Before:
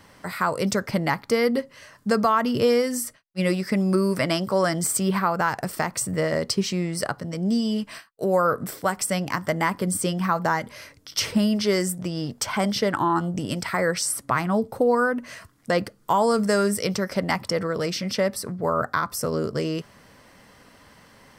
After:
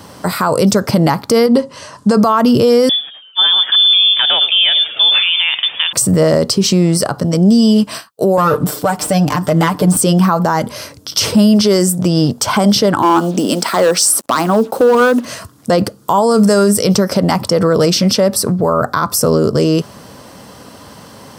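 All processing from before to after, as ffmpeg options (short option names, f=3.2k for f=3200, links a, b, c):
-filter_complex "[0:a]asettb=1/sr,asplit=3[a][b][c];[a]atrim=end=1.464[d];[b]atrim=start=1.46:end=2.17,asetpts=PTS-STARTPTS,afade=t=in:d=0.004:c=qsin,afade=t=out:st=0.706:d=0.004:c=qsin,lowpass=f=10k:w=0.5412,lowpass=f=10k:w=1.3066,equalizer=f=970:w=6:g=7.5,acompressor=threshold=-23dB:ratio=3:attack=3.2:release=140:knee=1:detection=peak[e];[c]atrim=start=2.166[f];[d][e]acrossfade=d=0.004:c1=hsin:c2=qsin[g];[g][f]acrossfade=d=0.004:c1=qsin:c2=hsin,asettb=1/sr,asplit=3[h][i][j];[h]atrim=end=2.894[k];[i]atrim=start=2.89:end=5.93,asetpts=PTS-STARTPTS,afade=t=in:d=0.004:c=qsin,afade=t=out:st=3.036:d=0.004:c=qsin,asplit=7[l][m][n][o][p][q][r];[m]adelay=109,afreqshift=130,volume=-18dB[s];[n]adelay=218,afreqshift=260,volume=-22.3dB[t];[o]adelay=327,afreqshift=390,volume=-26.6dB[u];[p]adelay=436,afreqshift=520,volume=-30.9dB[v];[q]adelay=545,afreqshift=650,volume=-35.2dB[w];[r]adelay=654,afreqshift=780,volume=-39.5dB[x];[l][s][t][u][v][w][x]amix=inputs=7:normalize=0,atrim=end_sample=134064,lowpass=f=3.1k:t=q:w=0.5098,lowpass=f=3.1k:t=q:w=0.6013,lowpass=f=3.1k:t=q:w=0.9,lowpass=f=3.1k:t=q:w=2.563,afreqshift=-3700[y];[j]atrim=start=5.926[z];[k][y]acrossfade=d=0.004:c1=hsin:c2=qsin[aa];[aa][z]acrossfade=d=0.004:c1=qsin:c2=hsin,asettb=1/sr,asplit=3[ab][ac][ad];[ab]atrim=end=8.374[ae];[ac]atrim=start=8.37:end=9.97,asetpts=PTS-STARTPTS,afade=t=in:d=0.004:c=qsin,afade=t=out:st=1.596:d=0.004:c=qsin,aeval=exprs='if(lt(val(0),0),0.447*val(0),val(0))':c=same,acrossover=split=3500[af][ag];[ag]acompressor=threshold=-36dB:ratio=4:attack=1:release=60[ah];[af][ah]amix=inputs=2:normalize=0,aecho=1:1:6.7:0.73,atrim=end_sample=70560[ai];[ad]atrim=start=9.966[aj];[ae][ai]acrossfade=d=0.004:c1=hsin:c2=qsin[ak];[ak][aj]acrossfade=d=0.004:c1=qsin:c2=hsin,asettb=1/sr,asplit=3[al][am][an];[al]atrim=end=13.024[ao];[am]atrim=start=13.02:end=15.25,asetpts=PTS-STARTPTS,afade=t=in:d=0.004:c=qsin,afade=t=out:st=2.226:d=0.004:c=qsin,highpass=f=220:w=0.5412,highpass=f=220:w=1.3066,asoftclip=type=hard:threshold=-18.5dB,acrusher=bits=7:mix=0:aa=0.5[ap];[an]atrim=start=15.246[aq];[ao][ap]acrossfade=d=0.004:c1=hsin:c2=qsin[ar];[ar][aq]acrossfade=d=0.004:c1=qsin:c2=hsin,highpass=76,equalizer=f=2k:w=1.7:g=-11,alimiter=level_in=19.5dB:limit=-1dB:release=50:level=0:latency=1,volume=-2.5dB"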